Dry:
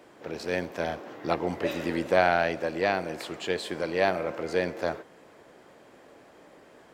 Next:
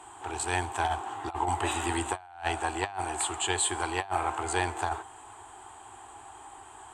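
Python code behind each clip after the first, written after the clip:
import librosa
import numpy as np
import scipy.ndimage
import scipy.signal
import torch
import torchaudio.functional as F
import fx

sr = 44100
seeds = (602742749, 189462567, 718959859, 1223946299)

y = fx.curve_eq(x, sr, hz=(110.0, 150.0, 380.0, 550.0, 790.0, 2100.0, 3100.0, 5400.0, 8200.0, 14000.0), db=(0, -30, -10, -29, 5, -12, -3, -16, 14, -20))
y = fx.over_compress(y, sr, threshold_db=-36.0, ratio=-0.5)
y = y * librosa.db_to_amplitude(7.0)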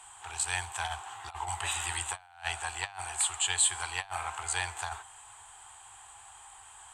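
y = fx.tone_stack(x, sr, knobs='10-0-10')
y = y * librosa.db_to_amplitude(3.5)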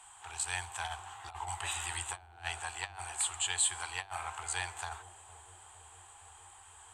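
y = fx.echo_bbd(x, sr, ms=460, stages=2048, feedback_pct=76, wet_db=-12.5)
y = y * librosa.db_to_amplitude(-4.0)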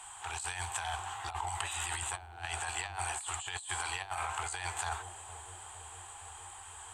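y = fx.over_compress(x, sr, threshold_db=-41.0, ratio=-1.0)
y = y * librosa.db_to_amplitude(3.5)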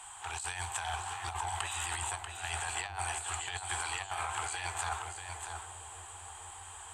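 y = x + 10.0 ** (-7.0 / 20.0) * np.pad(x, (int(638 * sr / 1000.0), 0))[:len(x)]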